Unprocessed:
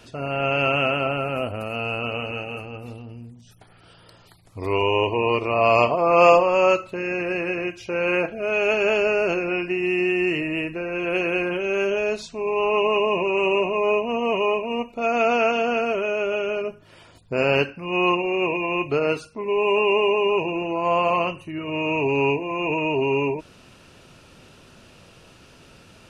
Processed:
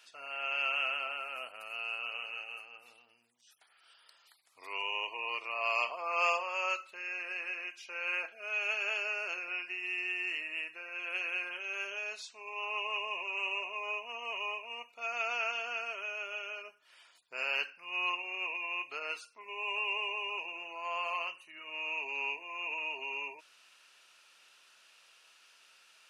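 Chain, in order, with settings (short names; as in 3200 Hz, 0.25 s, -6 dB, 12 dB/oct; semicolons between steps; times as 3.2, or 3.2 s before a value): HPF 1400 Hz 12 dB/oct; gain -7.5 dB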